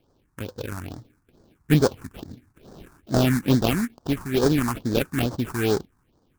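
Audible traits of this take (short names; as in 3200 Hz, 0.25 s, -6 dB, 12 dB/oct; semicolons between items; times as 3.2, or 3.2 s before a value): aliases and images of a low sample rate 2000 Hz, jitter 20%; phasing stages 4, 2.3 Hz, lowest notch 500–2600 Hz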